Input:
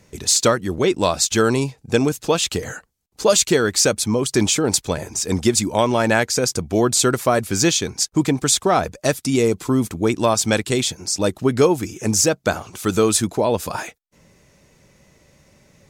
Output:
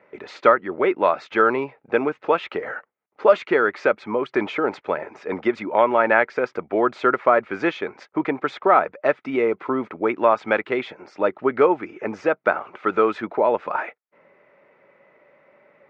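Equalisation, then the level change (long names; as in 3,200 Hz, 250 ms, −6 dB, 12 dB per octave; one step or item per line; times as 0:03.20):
loudspeaker in its box 370–2,300 Hz, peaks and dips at 400 Hz +3 dB, 580 Hz +7 dB, 880 Hz +4 dB, 1,300 Hz +7 dB, 2,100 Hz +5 dB
dynamic equaliser 570 Hz, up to −4 dB, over −26 dBFS, Q 1.8
−1.0 dB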